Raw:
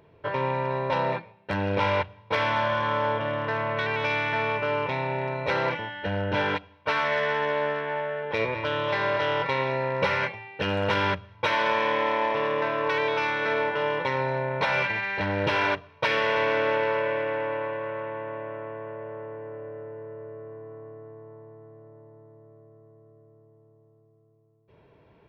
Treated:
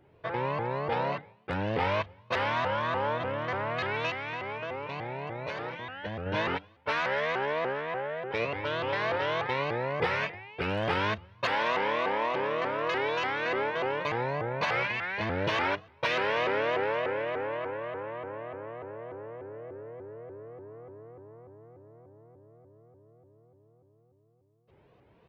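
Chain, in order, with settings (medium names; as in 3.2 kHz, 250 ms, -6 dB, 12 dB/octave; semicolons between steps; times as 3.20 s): 4.10–6.26 s: compression, threshold -29 dBFS, peak gain reduction 7.5 dB; vibrato with a chosen wave saw up 3.4 Hz, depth 250 cents; trim -4 dB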